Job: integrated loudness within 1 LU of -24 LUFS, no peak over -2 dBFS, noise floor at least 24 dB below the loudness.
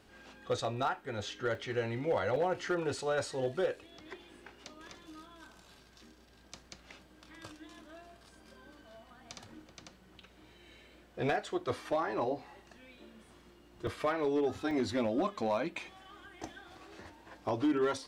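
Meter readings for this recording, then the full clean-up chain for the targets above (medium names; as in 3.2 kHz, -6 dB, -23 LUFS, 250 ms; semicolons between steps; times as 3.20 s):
clipped samples 0.4%; clipping level -24.0 dBFS; dropouts 4; longest dropout 2.0 ms; loudness -34.0 LUFS; peak level -24.0 dBFS; loudness target -24.0 LUFS
-> clip repair -24 dBFS; interpolate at 1.55/2.36/13.87/14.71 s, 2 ms; trim +10 dB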